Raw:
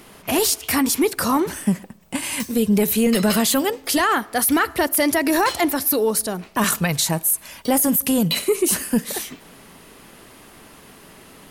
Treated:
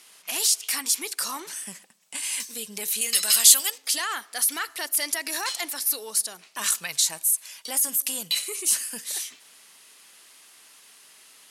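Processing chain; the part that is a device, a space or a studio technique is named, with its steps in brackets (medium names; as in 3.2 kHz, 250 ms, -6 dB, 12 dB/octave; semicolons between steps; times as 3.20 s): piezo pickup straight into a mixer (low-pass 7.7 kHz 12 dB/octave; differentiator); 3.01–3.78 s: tilt EQ +3 dB/octave; trim +3.5 dB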